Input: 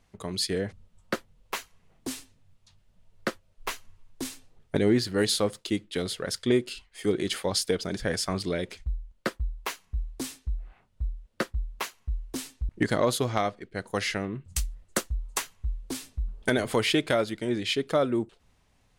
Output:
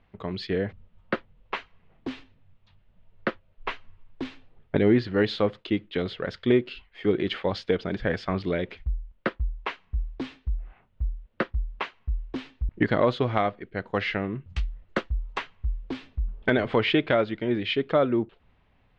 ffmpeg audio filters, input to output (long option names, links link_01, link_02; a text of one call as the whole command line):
ffmpeg -i in.wav -af "lowpass=frequency=3200:width=0.5412,lowpass=frequency=3200:width=1.3066,volume=2.5dB" out.wav